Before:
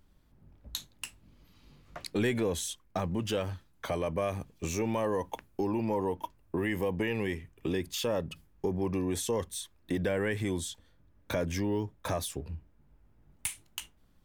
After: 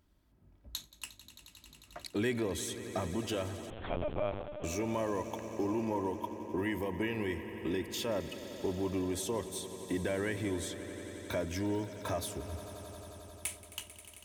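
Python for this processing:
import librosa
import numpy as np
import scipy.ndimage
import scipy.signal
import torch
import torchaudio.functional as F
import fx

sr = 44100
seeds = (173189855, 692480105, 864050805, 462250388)

y = scipy.signal.sosfilt(scipy.signal.butter(2, 41.0, 'highpass', fs=sr, output='sos'), x)
y = y + 0.34 * np.pad(y, (int(3.1 * sr / 1000.0), 0))[:len(y)]
y = fx.echo_swell(y, sr, ms=89, loudest=5, wet_db=-17)
y = fx.lpc_vocoder(y, sr, seeds[0], excitation='pitch_kept', order=8, at=(3.7, 4.64))
y = y * librosa.db_to_amplitude(-4.0)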